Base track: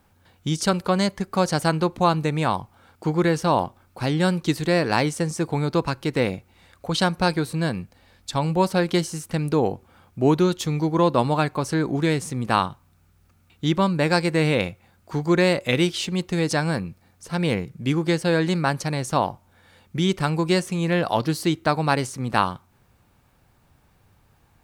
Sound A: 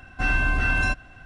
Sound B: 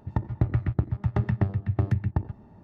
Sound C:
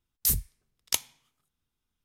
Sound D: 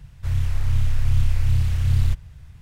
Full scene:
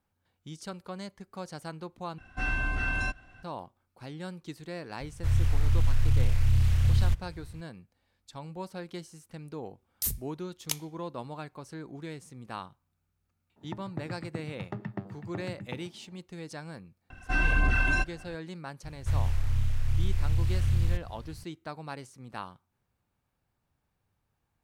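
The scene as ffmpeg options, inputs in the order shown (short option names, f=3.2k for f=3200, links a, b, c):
-filter_complex "[1:a]asplit=2[a][b];[4:a]asplit=2[c][d];[0:a]volume=-19dB[e];[c]alimiter=limit=-14dB:level=0:latency=1:release=12[f];[2:a]highpass=f=150:w=0.5412,highpass=f=150:w=1.3066[g];[b]aphaser=in_gain=1:out_gain=1:delay=3.2:decay=0.43:speed=1.8:type=sinusoidal[h];[d]acompressor=threshold=-26dB:ratio=2.5:attack=90:release=119:knee=1:detection=peak[i];[e]asplit=2[j][k];[j]atrim=end=2.184[l];[a]atrim=end=1.25,asetpts=PTS-STARTPTS,volume=-7.5dB[m];[k]atrim=start=3.426[n];[f]atrim=end=2.61,asetpts=PTS-STARTPTS,volume=-2dB,afade=t=in:d=0.004:c=hsin,afade=t=out:st=2.606:d=0.004:c=hsin,adelay=5000[o];[3:a]atrim=end=2.04,asetpts=PTS-STARTPTS,volume=-6dB,afade=t=in:d=0.004:c=hsin,afade=t=out:st=2.036:d=0.004:c=hsin,adelay=9770[p];[g]atrim=end=2.63,asetpts=PTS-STARTPTS,volume=-7.5dB,afade=t=in:d=0.004:c=hsin,afade=t=out:st=2.626:d=0.004:c=hsin,adelay=13560[q];[h]atrim=end=1.25,asetpts=PTS-STARTPTS,volume=-5dB,afade=t=in:d=0.004:c=hsin,afade=t=out:st=1.246:d=0.004:c=hsin,adelay=17100[r];[i]atrim=end=2.61,asetpts=PTS-STARTPTS,volume=-2dB,afade=t=in:d=0.004:c=hsin,afade=t=out:st=2.606:d=0.004:c=hsin,adelay=18830[s];[l][m]acrossfade=d=0.004:c1=hsin:c2=hsin[t];[t][n]acrossfade=d=0.004:c1=hsin:c2=hsin[u];[u][o][p][q][r][s]amix=inputs=6:normalize=0"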